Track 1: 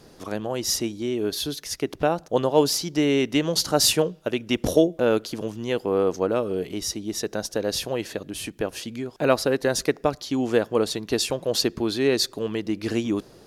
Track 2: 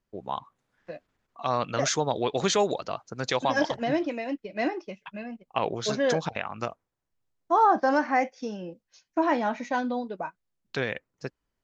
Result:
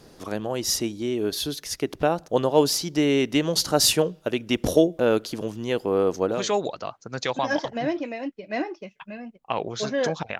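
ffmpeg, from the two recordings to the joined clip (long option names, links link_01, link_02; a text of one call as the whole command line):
ffmpeg -i cue0.wav -i cue1.wav -filter_complex "[0:a]apad=whole_dur=10.39,atrim=end=10.39,atrim=end=6.53,asetpts=PTS-STARTPTS[link_01];[1:a]atrim=start=2.31:end=6.45,asetpts=PTS-STARTPTS[link_02];[link_01][link_02]acrossfade=duration=0.28:curve1=tri:curve2=tri" out.wav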